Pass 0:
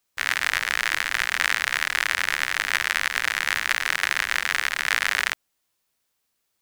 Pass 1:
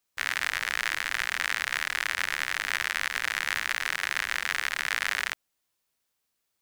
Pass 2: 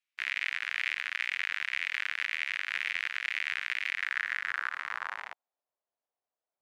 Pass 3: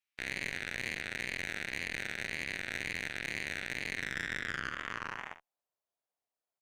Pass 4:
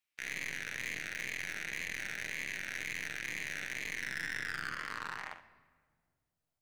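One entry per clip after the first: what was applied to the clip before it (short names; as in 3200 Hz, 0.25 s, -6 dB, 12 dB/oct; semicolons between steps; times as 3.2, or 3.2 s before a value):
limiter -5 dBFS, peak gain reduction 3.5 dB; gain -4 dB
wow and flutter 140 cents; band-pass sweep 2400 Hz -> 660 Hz, 3.87–5.64
tube stage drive 26 dB, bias 0.55; on a send: early reflections 45 ms -11 dB, 69 ms -14 dB
overloaded stage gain 31 dB; reverb RT60 1.7 s, pre-delay 6 ms, DRR 11.5 dB; gain +1.5 dB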